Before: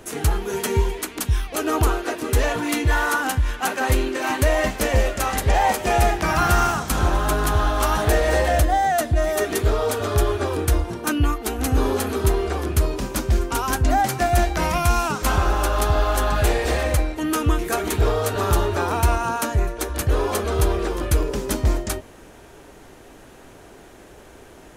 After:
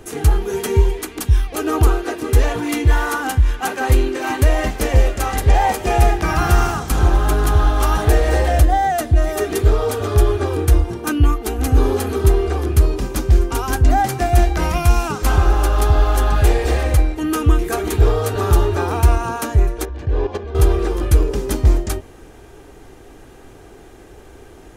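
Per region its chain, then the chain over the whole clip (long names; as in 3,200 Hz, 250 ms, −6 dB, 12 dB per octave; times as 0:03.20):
0:19.85–0:20.55: output level in coarse steps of 11 dB + Butterworth band-reject 1,300 Hz, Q 6.5 + high-frequency loss of the air 180 metres
whole clip: low-shelf EQ 360 Hz +6.5 dB; comb filter 2.5 ms, depth 32%; level −1 dB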